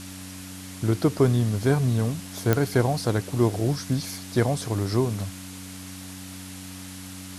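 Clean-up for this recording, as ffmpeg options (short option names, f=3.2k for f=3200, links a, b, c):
-af "adeclick=t=4,bandreject=f=93.5:t=h:w=4,bandreject=f=187:t=h:w=4,bandreject=f=280.5:t=h:w=4,afwtdn=0.0089"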